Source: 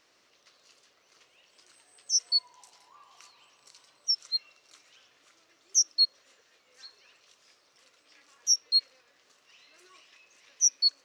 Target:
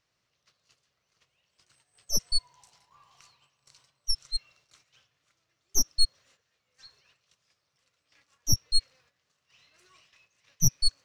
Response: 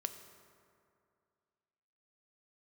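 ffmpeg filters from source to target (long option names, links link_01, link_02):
-af "agate=range=-9dB:threshold=-59dB:ratio=16:detection=peak,aeval=exprs='0.266*(cos(1*acos(clip(val(0)/0.266,-1,1)))-cos(1*PI/2))+0.0473*(cos(4*acos(clip(val(0)/0.266,-1,1)))-cos(4*PI/2))':channel_layout=same,lowshelf=frequency=200:width_type=q:width=1.5:gain=13,volume=-3.5dB"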